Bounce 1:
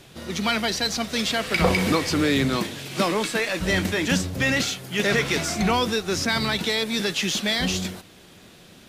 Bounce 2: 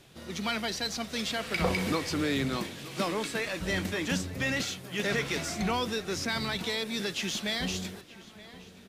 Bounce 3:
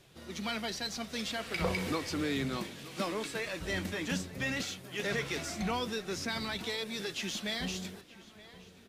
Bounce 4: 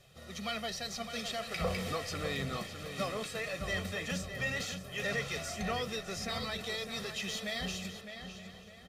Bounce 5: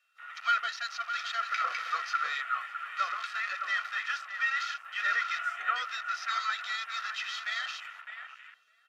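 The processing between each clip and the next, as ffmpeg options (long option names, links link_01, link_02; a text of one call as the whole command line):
ffmpeg -i in.wav -filter_complex "[0:a]asplit=2[link_01][link_02];[link_02]adelay=924,lowpass=frequency=3400:poles=1,volume=-17.5dB,asplit=2[link_03][link_04];[link_04]adelay=924,lowpass=frequency=3400:poles=1,volume=0.52,asplit=2[link_05][link_06];[link_06]adelay=924,lowpass=frequency=3400:poles=1,volume=0.52,asplit=2[link_07][link_08];[link_08]adelay=924,lowpass=frequency=3400:poles=1,volume=0.52[link_09];[link_01][link_03][link_05][link_07][link_09]amix=inputs=5:normalize=0,volume=-8dB" out.wav
ffmpeg -i in.wav -af "flanger=delay=1.7:depth=3.8:regen=-68:speed=0.58:shape=triangular" out.wav
ffmpeg -i in.wav -filter_complex "[0:a]aecho=1:1:1.6:0.73,asplit=2[link_01][link_02];[link_02]asoftclip=type=hard:threshold=-31dB,volume=-10dB[link_03];[link_01][link_03]amix=inputs=2:normalize=0,asplit=2[link_04][link_05];[link_05]adelay=608,lowpass=frequency=3900:poles=1,volume=-8dB,asplit=2[link_06][link_07];[link_07]adelay=608,lowpass=frequency=3900:poles=1,volume=0.35,asplit=2[link_08][link_09];[link_09]adelay=608,lowpass=frequency=3900:poles=1,volume=0.35,asplit=2[link_10][link_11];[link_11]adelay=608,lowpass=frequency=3900:poles=1,volume=0.35[link_12];[link_04][link_06][link_08][link_10][link_12]amix=inputs=5:normalize=0,volume=-5dB" out.wav
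ffmpeg -i in.wav -af "aeval=exprs='val(0)+0.000891*sin(2*PI*2700*n/s)':channel_layout=same,highpass=frequency=1400:width_type=q:width=8.6,afwtdn=0.00708" out.wav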